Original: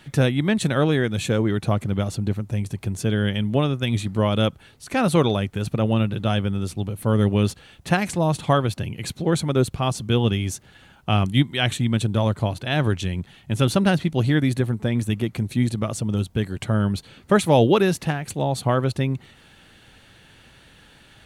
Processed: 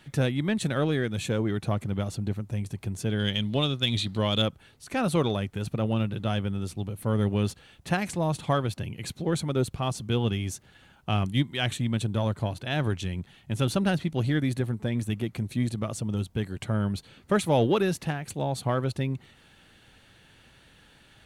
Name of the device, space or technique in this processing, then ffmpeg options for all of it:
parallel distortion: -filter_complex "[0:a]asettb=1/sr,asplit=3[a][b][c];[a]atrim=end=3.194[d];[b]atrim=start=3.19:end=4.42,asetpts=PTS-STARTPTS,afade=t=in:d=0.004:c=qsin,afade=t=out:st=1.226:d=0.004:c=qsin,equalizer=f=3.9k:w=1.7:g=15[e];[c]atrim=start=4.416[f];[d][e]acrossfade=d=0.004:c1=hsin:c2=qsin[g];[g][f]acrossfade=d=0.004:c1=qsin:c2=hsin,asplit=2[h][i];[i]asoftclip=type=hard:threshold=-18.5dB,volume=-12dB[j];[h][j]amix=inputs=2:normalize=0,volume=-7.5dB"

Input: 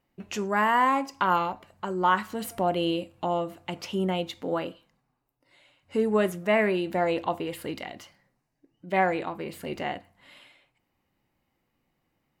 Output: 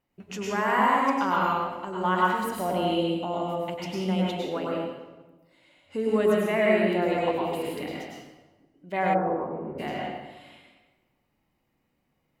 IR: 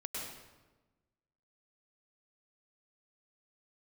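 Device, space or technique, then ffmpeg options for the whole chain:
bathroom: -filter_complex "[1:a]atrim=start_sample=2205[a];[0:a][a]afir=irnorm=-1:irlink=0,asplit=3[b][c][d];[b]afade=t=out:st=9.13:d=0.02[e];[c]lowpass=f=1.2k:w=0.5412,lowpass=f=1.2k:w=1.3066,afade=t=in:st=9.13:d=0.02,afade=t=out:st=9.78:d=0.02[f];[d]afade=t=in:st=9.78:d=0.02[g];[e][f][g]amix=inputs=3:normalize=0"

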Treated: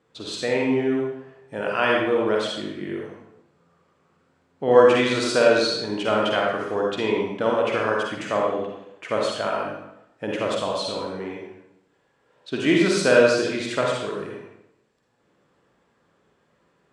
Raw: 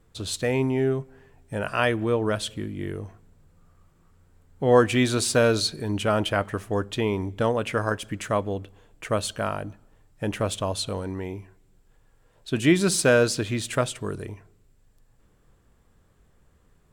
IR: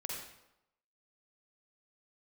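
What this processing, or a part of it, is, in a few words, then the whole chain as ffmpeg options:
supermarket ceiling speaker: -filter_complex "[0:a]highpass=230,lowpass=5k[a];[1:a]atrim=start_sample=2205[b];[a][b]afir=irnorm=-1:irlink=0,volume=3.5dB"

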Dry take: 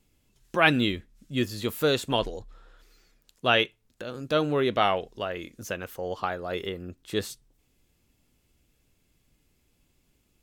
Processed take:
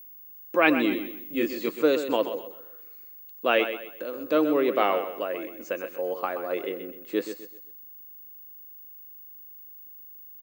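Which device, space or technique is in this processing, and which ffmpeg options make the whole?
old television with a line whistle: -filter_complex "[0:a]highpass=f=220:w=0.5412,highpass=f=220:w=1.3066,equalizer=f=310:t=q:w=4:g=9,equalizer=f=520:t=q:w=4:g=9,equalizer=f=1.1k:t=q:w=4:g=4,equalizer=f=2.3k:t=q:w=4:g=5,equalizer=f=3.4k:t=q:w=4:g=-8,equalizer=f=5.6k:t=q:w=4:g=-6,lowpass=f=7.5k:w=0.5412,lowpass=f=7.5k:w=1.3066,aeval=exprs='val(0)+0.00891*sin(2*PI*15625*n/s)':c=same,asettb=1/sr,asplit=3[a][b][c];[a]atrim=end=0.894[d];[b]atrim=start=0.89:end=1.69,asetpts=PTS-STARTPTS,afade=t=in:d=0.004:c=qsin,afade=t=out:st=0.796:d=0.004:c=qsin,asplit=2[e][f];[f]adelay=26,volume=-2dB[g];[e][g]amix=inputs=2:normalize=0,atrim=end_sample=35280[h];[c]atrim=start=1.686[i];[d][h]acrossfade=d=0.004:c1=hsin:c2=qsin[j];[j][i]acrossfade=d=0.004:c1=qsin:c2=hsin,aecho=1:1:128|256|384|512:0.316|0.108|0.0366|0.0124,volume=-3dB"

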